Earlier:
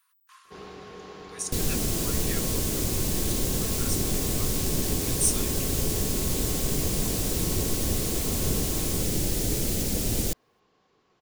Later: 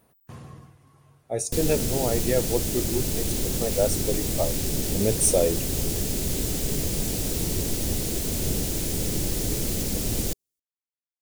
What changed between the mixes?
speech: remove rippled Chebyshev high-pass 1 kHz, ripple 3 dB; first sound: muted

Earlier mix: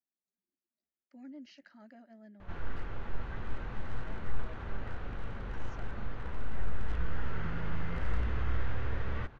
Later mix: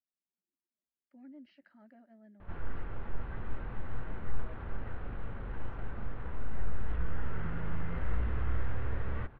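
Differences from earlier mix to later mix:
speech -3.0 dB; master: add distance through air 350 m

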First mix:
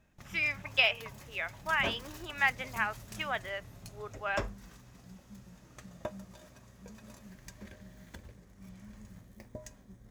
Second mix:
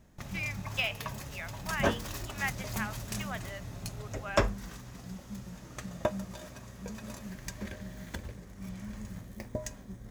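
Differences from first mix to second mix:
speech -6.0 dB; background +9.0 dB

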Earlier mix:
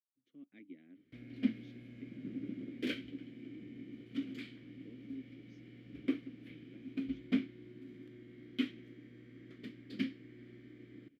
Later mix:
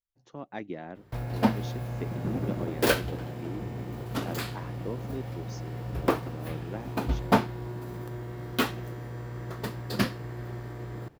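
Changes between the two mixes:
speech +6.0 dB; master: remove vowel filter i

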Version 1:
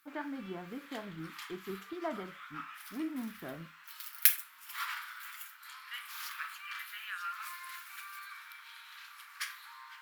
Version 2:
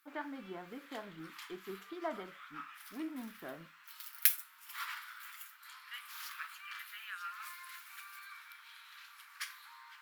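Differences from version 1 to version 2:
speech: add peaking EQ 81 Hz -13.5 dB 2.7 oct; background: send off

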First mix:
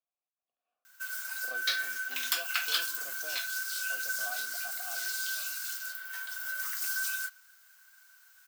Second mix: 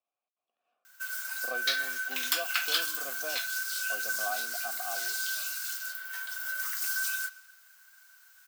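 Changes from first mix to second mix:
speech +8.5 dB; background: send +10.0 dB

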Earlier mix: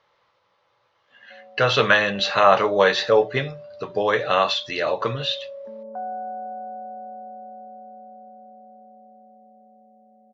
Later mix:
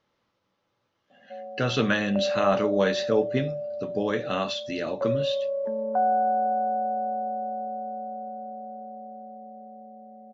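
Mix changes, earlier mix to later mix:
speech: add ten-band graphic EQ 125 Hz -3 dB, 250 Hz +10 dB, 500 Hz -8 dB, 1 kHz -10 dB, 2 kHz -7 dB, 4 kHz -7 dB; background +8.5 dB

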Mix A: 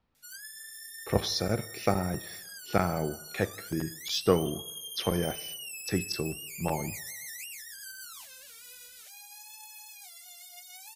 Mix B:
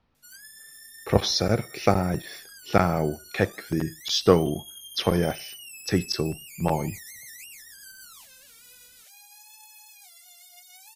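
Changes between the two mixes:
speech +9.5 dB; reverb: off

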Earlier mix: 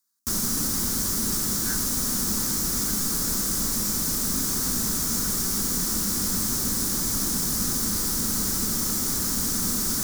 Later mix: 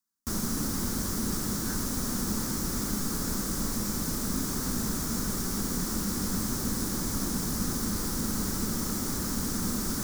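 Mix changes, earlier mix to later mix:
speech -5.0 dB; master: add treble shelf 2.5 kHz -9.5 dB

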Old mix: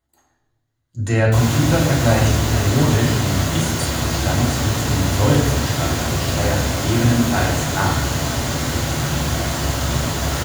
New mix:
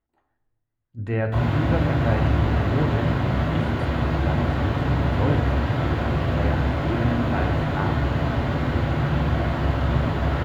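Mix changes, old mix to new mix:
speech: send -10.5 dB; master: add distance through air 490 m

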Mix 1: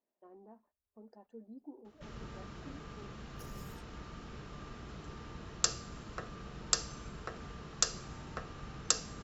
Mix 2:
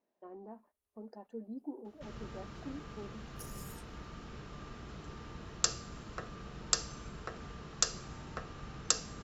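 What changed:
speech +7.0 dB; second sound: add peaking EQ 9.9 kHz +12 dB 1 oct

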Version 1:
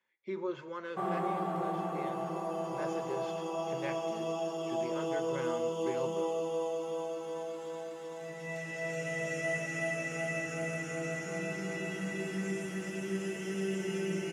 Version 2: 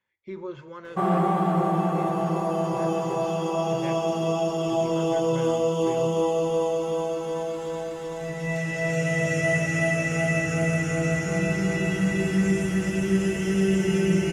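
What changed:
background +9.5 dB; master: remove high-pass 230 Hz 12 dB/octave

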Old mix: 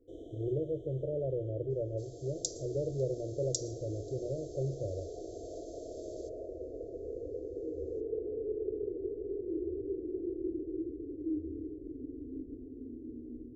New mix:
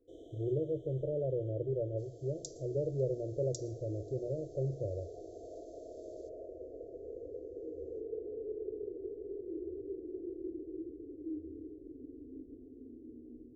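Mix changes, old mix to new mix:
first sound: add bass shelf 420 Hz -9 dB; second sound -10.5 dB

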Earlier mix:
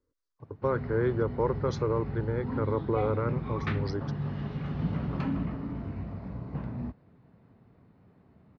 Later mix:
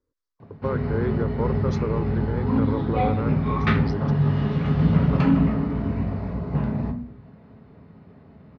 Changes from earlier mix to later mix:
background +6.5 dB; reverb: on, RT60 0.45 s

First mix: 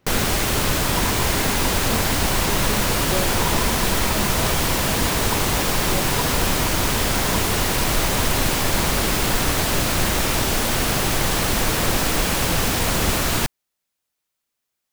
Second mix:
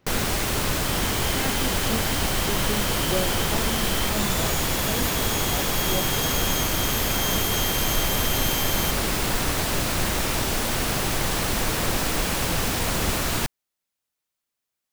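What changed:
first sound -4.0 dB; second sound: remove resonant low-pass 1 kHz, resonance Q 12

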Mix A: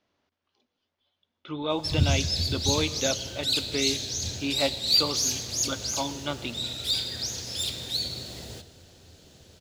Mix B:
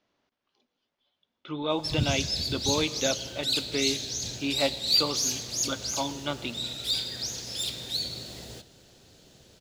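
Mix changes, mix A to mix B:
background: send -10.0 dB; master: add peaking EQ 85 Hz -13 dB 0.27 oct

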